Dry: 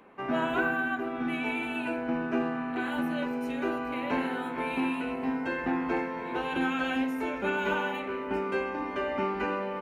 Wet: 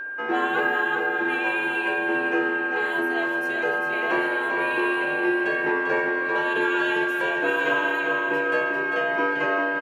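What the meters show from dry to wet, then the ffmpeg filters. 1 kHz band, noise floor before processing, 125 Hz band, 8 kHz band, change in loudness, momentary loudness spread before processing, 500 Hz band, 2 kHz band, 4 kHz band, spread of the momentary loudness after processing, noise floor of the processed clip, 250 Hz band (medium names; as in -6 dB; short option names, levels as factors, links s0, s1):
+6.0 dB, -36 dBFS, -4.0 dB, no reading, +7.5 dB, 4 LU, +7.0 dB, +12.5 dB, +6.5 dB, 2 LU, -27 dBFS, +1.5 dB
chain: -af "afreqshift=94,aeval=exprs='val(0)+0.02*sin(2*PI*1600*n/s)':c=same,aecho=1:1:395|790|1185|1580|1975:0.501|0.205|0.0842|0.0345|0.0142,volume=1.58"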